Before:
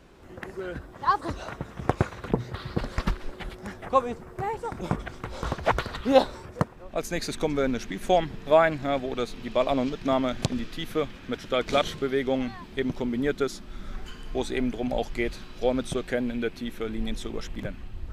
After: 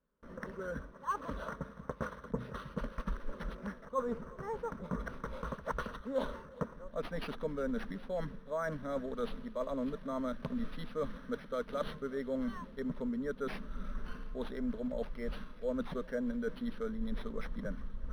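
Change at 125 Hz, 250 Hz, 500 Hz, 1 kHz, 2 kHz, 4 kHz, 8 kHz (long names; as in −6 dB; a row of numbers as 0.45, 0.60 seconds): −11.5 dB, −9.0 dB, −11.5 dB, −13.5 dB, −12.0 dB, −17.5 dB, below −15 dB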